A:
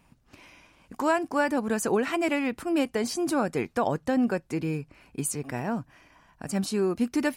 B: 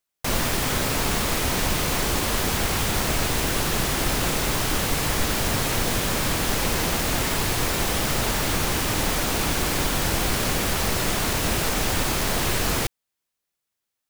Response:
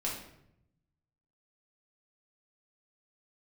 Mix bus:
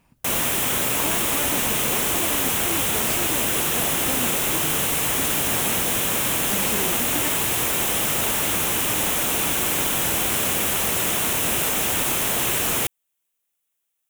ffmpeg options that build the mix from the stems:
-filter_complex "[0:a]acompressor=threshold=-30dB:ratio=6,volume=-0.5dB[link_01];[1:a]highpass=frequency=180:poles=1,aexciter=amount=1.2:drive=4.7:freq=2500,volume=-0.5dB[link_02];[link_01][link_02]amix=inputs=2:normalize=0"

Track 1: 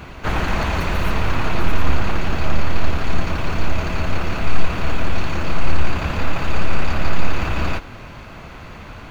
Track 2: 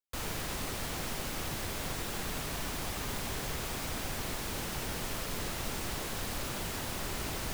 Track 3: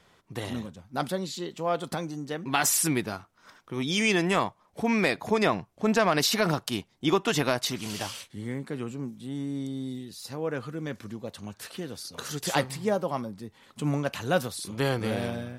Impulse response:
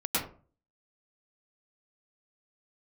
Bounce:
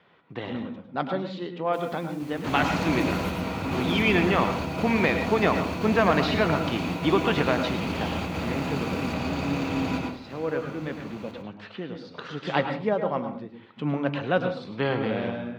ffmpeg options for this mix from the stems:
-filter_complex "[0:a]equalizer=frequency=1500:width_type=o:width=1.1:gain=-8,adelay=2200,volume=-9.5dB,asplit=2[link_01][link_02];[link_02]volume=-4.5dB[link_03];[1:a]adelay=1600,volume=-16dB[link_04];[2:a]lowpass=frequency=3300:width=0.5412,lowpass=frequency=3300:width=1.3066,volume=0dB,asplit=3[link_05][link_06][link_07];[link_06]volume=-14dB[link_08];[link_07]apad=whole_len=498727[link_09];[link_01][link_09]sidechaingate=range=-33dB:threshold=-48dB:ratio=16:detection=peak[link_10];[3:a]atrim=start_sample=2205[link_11];[link_03][link_08]amix=inputs=2:normalize=0[link_12];[link_12][link_11]afir=irnorm=-1:irlink=0[link_13];[link_10][link_04][link_05][link_13]amix=inputs=4:normalize=0,highpass=140"

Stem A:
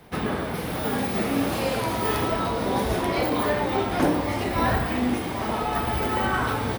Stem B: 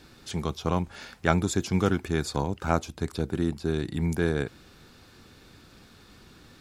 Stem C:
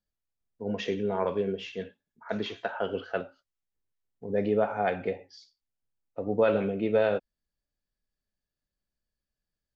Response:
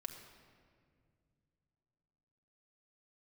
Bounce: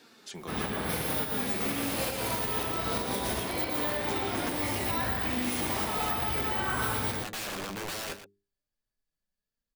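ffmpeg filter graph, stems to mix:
-filter_complex "[0:a]highshelf=frequency=5800:gain=7,adelay=350,volume=2.5dB,asplit=2[link_01][link_02];[link_02]volume=-6.5dB[link_03];[1:a]highpass=280,acompressor=threshold=-39dB:ratio=3,volume=2dB,asplit=2[link_04][link_05];[2:a]bandreject=frequency=50:width_type=h:width=6,bandreject=frequency=100:width_type=h:width=6,bandreject=frequency=150:width_type=h:width=6,bandreject=frequency=200:width_type=h:width=6,bandreject=frequency=250:width_type=h:width=6,bandreject=frequency=300:width_type=h:width=6,bandreject=frequency=350:width_type=h:width=6,bandreject=frequency=400:width_type=h:width=6,aeval=exprs='(mod(21.1*val(0)+1,2)-1)/21.1':channel_layout=same,adelay=950,volume=2dB,asplit=2[link_06][link_07];[link_07]volume=-19dB[link_08];[link_05]apad=whole_len=314461[link_09];[link_01][link_09]sidechaincompress=threshold=-43dB:ratio=6:attack=7:release=179[link_10];[link_04][link_06]amix=inputs=2:normalize=0,flanger=delay=4.3:depth=7.8:regen=47:speed=0.31:shape=sinusoidal,alimiter=level_in=4.5dB:limit=-24dB:level=0:latency=1:release=478,volume=-4.5dB,volume=0dB[link_11];[link_03][link_08]amix=inputs=2:normalize=0,aecho=0:1:118:1[link_12];[link_10][link_11][link_12]amix=inputs=3:normalize=0,acrossover=split=1600|6800[link_13][link_14][link_15];[link_13]acompressor=threshold=-31dB:ratio=4[link_16];[link_14]acompressor=threshold=-36dB:ratio=4[link_17];[link_15]acompressor=threshold=-30dB:ratio=4[link_18];[link_16][link_17][link_18]amix=inputs=3:normalize=0,alimiter=limit=-19.5dB:level=0:latency=1:release=179"

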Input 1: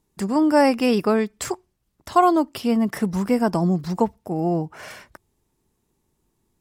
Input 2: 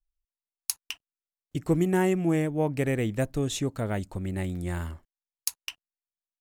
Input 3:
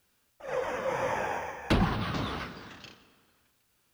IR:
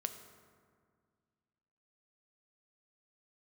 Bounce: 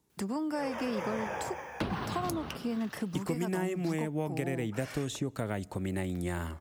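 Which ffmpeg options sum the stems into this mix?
-filter_complex "[0:a]acompressor=threshold=-34dB:ratio=2,volume=-2dB[link_01];[1:a]acompressor=threshold=-28dB:ratio=2,adelay=1600,volume=2.5dB,asplit=2[link_02][link_03];[link_03]volume=-20dB[link_04];[2:a]adelay=100,volume=-2dB[link_05];[3:a]atrim=start_sample=2205[link_06];[link_04][link_06]afir=irnorm=-1:irlink=0[link_07];[link_01][link_02][link_05][link_07]amix=inputs=4:normalize=0,highpass=64,acrossover=split=200|1200[link_08][link_09][link_10];[link_08]acompressor=threshold=-38dB:ratio=4[link_11];[link_09]acompressor=threshold=-33dB:ratio=4[link_12];[link_10]acompressor=threshold=-41dB:ratio=4[link_13];[link_11][link_12][link_13]amix=inputs=3:normalize=0"

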